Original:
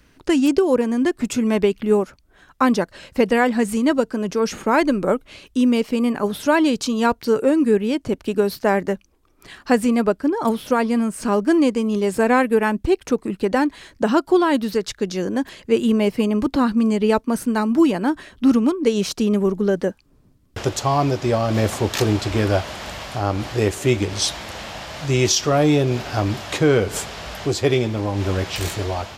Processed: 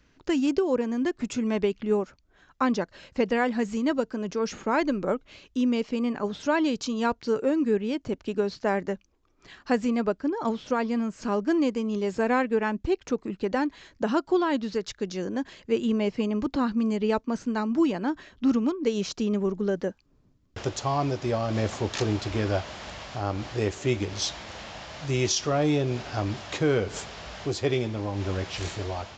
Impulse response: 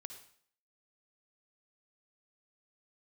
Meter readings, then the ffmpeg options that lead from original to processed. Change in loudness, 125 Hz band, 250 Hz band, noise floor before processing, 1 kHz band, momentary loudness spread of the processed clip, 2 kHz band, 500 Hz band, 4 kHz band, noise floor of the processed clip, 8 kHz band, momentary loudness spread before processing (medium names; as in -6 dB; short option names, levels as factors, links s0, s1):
-7.5 dB, -7.5 dB, -7.5 dB, -56 dBFS, -7.5 dB, 8 LU, -7.5 dB, -7.5 dB, -7.5 dB, -63 dBFS, -8.5 dB, 8 LU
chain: -af "aresample=16000,aresample=44100,volume=0.422"